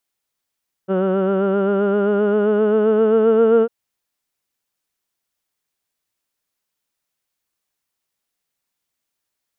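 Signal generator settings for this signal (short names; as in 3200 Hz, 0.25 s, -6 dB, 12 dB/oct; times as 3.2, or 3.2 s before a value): formant vowel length 2.80 s, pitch 187 Hz, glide +3.5 st, vibrato 7.6 Hz, vibrato depth 0.45 st, F1 480 Hz, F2 1400 Hz, F3 2900 Hz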